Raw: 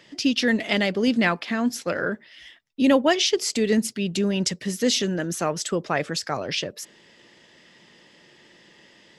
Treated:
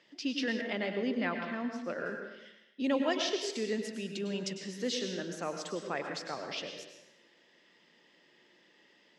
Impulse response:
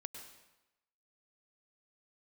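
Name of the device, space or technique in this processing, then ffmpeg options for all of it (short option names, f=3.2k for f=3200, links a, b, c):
supermarket ceiling speaker: -filter_complex "[0:a]highpass=210,lowpass=5.9k[a];[1:a]atrim=start_sample=2205[b];[a][b]afir=irnorm=-1:irlink=0,asettb=1/sr,asplit=3[c][d][e];[c]atrim=end=0.614[f];[d]atrim=start=0.61:end=2.06,asetpts=PTS-STARTPTS,afade=t=in:d=0.004:c=qsin,afade=t=out:st=1.446:d=0.004:c=qsin,aemphasis=mode=reproduction:type=75fm[g];[e]atrim=start=2.056[h];[f][g]acrossfade=d=0.004:c1=hsin:c2=qsin[i];[i][h]acrossfade=d=0.004:c1=qsin:c2=hsin,volume=-7dB"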